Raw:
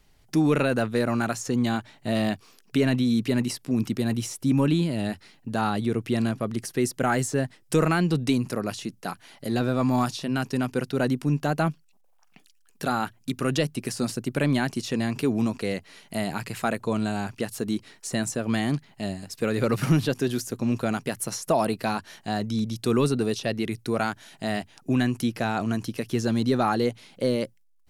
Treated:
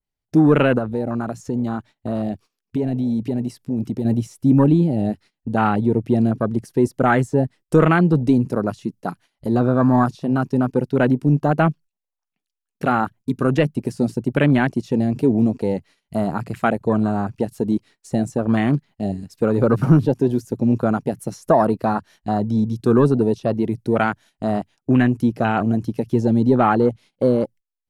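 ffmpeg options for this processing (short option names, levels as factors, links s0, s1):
-filter_complex "[0:a]asettb=1/sr,asplit=3[s0][s1][s2];[s0]atrim=end=0.784[s3];[s1]atrim=start=0.78:end=4.05,asetpts=PTS-STARTPTS,afade=t=in:d=0.004:c=qsin,afade=t=out:st=3.266:d=0.004:c=qsin,acompressor=threshold=0.0316:ratio=2:attack=3.2:release=140:knee=1:detection=peak[s4];[s2]atrim=start=4.046[s5];[s3][s4]acrossfade=d=0.004:c1=hsin:c2=qsin[s6];[s6][s5]acrossfade=d=0.004:c1=qsin:c2=hsin,agate=range=0.141:threshold=0.00562:ratio=16:detection=peak,afwtdn=0.0282,adynamicequalizer=threshold=0.01:dfrequency=2100:dqfactor=0.7:tfrequency=2100:tqfactor=0.7:attack=5:release=100:ratio=0.375:range=2:mode=cutabove:tftype=highshelf,volume=2.37"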